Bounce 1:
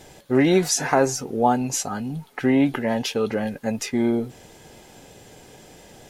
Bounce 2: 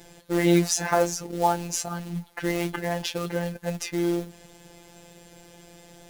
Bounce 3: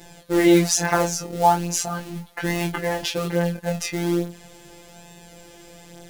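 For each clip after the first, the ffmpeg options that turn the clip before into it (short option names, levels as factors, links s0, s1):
-af "acrusher=bits=4:mode=log:mix=0:aa=0.000001,afftfilt=real='hypot(re,im)*cos(PI*b)':imag='0':win_size=1024:overlap=0.75,equalizer=f=64:w=1.5:g=11"
-af "flanger=delay=18.5:depth=6.3:speed=0.39,volume=2.37"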